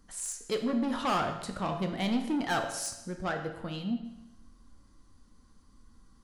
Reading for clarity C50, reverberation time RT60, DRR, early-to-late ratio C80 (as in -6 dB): 7.5 dB, 0.95 s, 4.0 dB, 9.5 dB